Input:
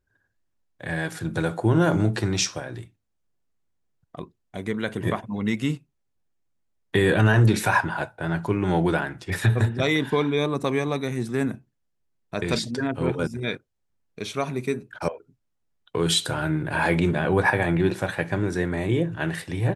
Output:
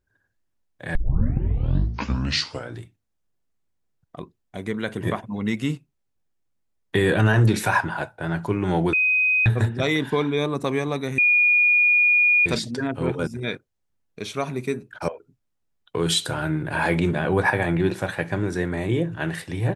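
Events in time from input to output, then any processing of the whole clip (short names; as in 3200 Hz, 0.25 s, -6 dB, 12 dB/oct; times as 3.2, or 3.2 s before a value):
0.95 tape start 1.84 s
8.93–9.46 bleep 2510 Hz -16.5 dBFS
11.18–12.46 bleep 2440 Hz -14 dBFS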